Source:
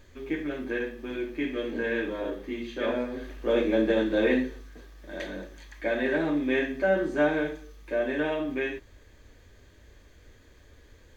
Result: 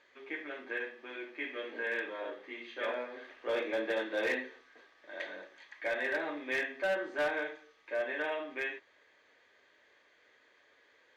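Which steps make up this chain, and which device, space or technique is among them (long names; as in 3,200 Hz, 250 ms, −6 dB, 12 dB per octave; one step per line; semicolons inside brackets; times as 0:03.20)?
megaphone (band-pass filter 650–3,600 Hz; parametric band 2,000 Hz +4 dB 0.21 octaves; hard clipping −24 dBFS, distortion −17 dB)
level −2.5 dB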